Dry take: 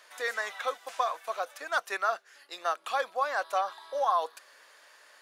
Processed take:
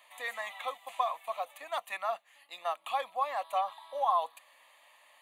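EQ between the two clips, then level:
phaser with its sweep stopped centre 1,500 Hz, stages 6
0.0 dB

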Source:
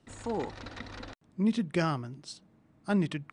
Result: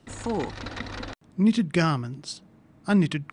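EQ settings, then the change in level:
dynamic equaliser 590 Hz, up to −5 dB, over −44 dBFS, Q 0.78
+8.0 dB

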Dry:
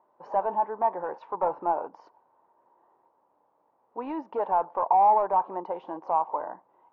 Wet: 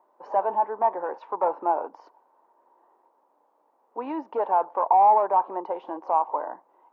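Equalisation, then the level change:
high-pass filter 240 Hz 24 dB per octave
+2.5 dB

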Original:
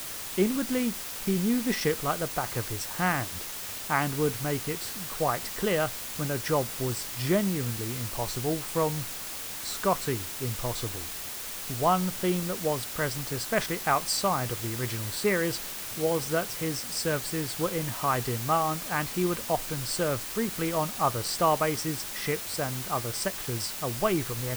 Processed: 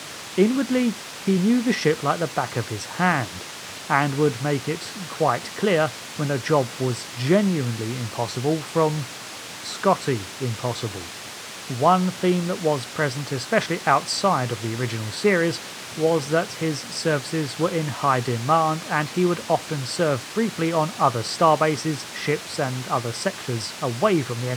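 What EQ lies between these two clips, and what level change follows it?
high-pass filter 100 Hz 24 dB per octave
high-frequency loss of the air 71 metres
+7.0 dB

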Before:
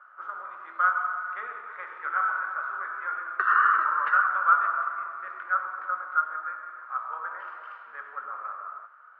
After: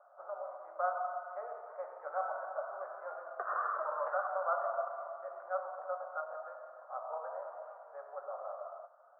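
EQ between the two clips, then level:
flat-topped band-pass 640 Hz, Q 3.4
high-frequency loss of the air 220 metres
+14.0 dB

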